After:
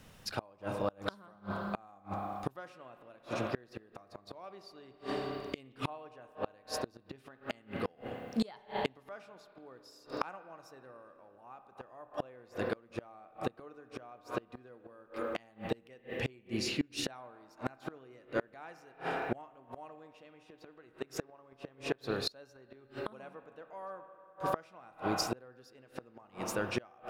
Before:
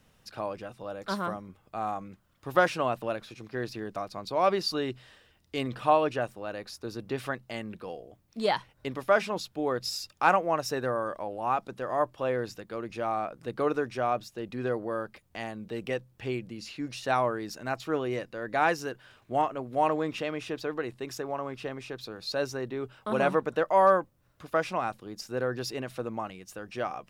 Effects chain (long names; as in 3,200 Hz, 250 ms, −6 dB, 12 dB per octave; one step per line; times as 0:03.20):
spring reverb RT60 2.5 s, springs 30/59 ms, chirp 25 ms, DRR 7.5 dB
gate with flip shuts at −26 dBFS, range −31 dB
level +6.5 dB